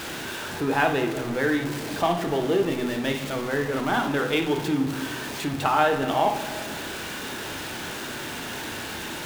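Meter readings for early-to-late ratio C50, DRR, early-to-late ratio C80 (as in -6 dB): 7.0 dB, 5.0 dB, 11.5 dB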